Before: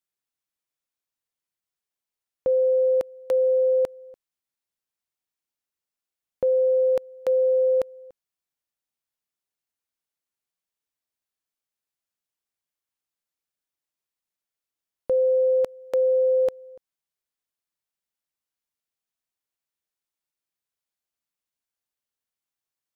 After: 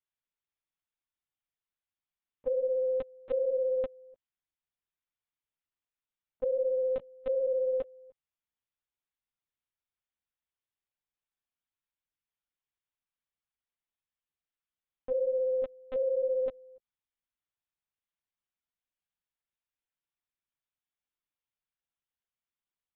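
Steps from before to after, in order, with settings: bell 510 Hz -5 dB 0.58 oct; LPC vocoder at 8 kHz pitch kept; gain -4 dB

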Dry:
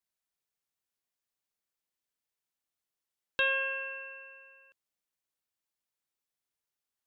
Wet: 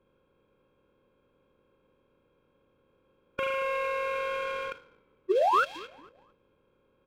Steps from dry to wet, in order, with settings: per-bin compression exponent 0.4; compressor 6:1, threshold -35 dBFS, peak gain reduction 12 dB; spring tank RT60 1.1 s, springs 37 ms, chirp 65 ms, DRR 15.5 dB; painted sound rise, 5.3–5.64, 380–1600 Hz -21 dBFS; bell 4500 Hz +11.5 dB 1.7 oct; low-pass opened by the level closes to 470 Hz, open at -24 dBFS; on a send: frequency-shifting echo 0.226 s, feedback 43%, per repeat -45 Hz, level -23 dB; on the sum: formant shift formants -2 st; in parallel at -5 dB: crossover distortion -40.5 dBFS; on the sum: sample leveller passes 1; gain -1.5 dB

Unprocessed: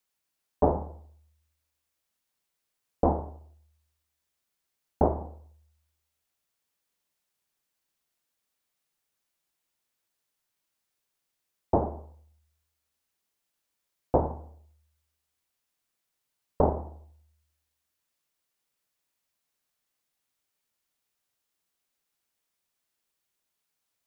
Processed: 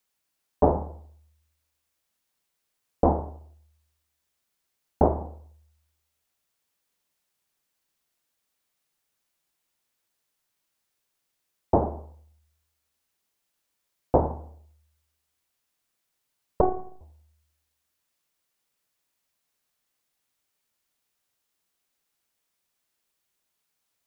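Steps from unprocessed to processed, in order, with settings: 16.61–17.01 robotiser 371 Hz; gain +3 dB

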